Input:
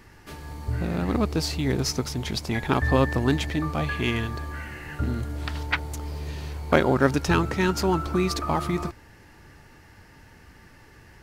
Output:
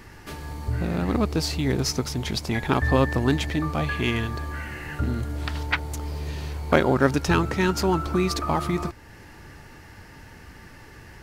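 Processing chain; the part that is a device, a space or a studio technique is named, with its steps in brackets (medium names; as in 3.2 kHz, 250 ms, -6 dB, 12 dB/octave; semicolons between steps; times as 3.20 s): parallel compression (in parallel at -1.5 dB: compression, threshold -41 dBFS, peak gain reduction 25 dB)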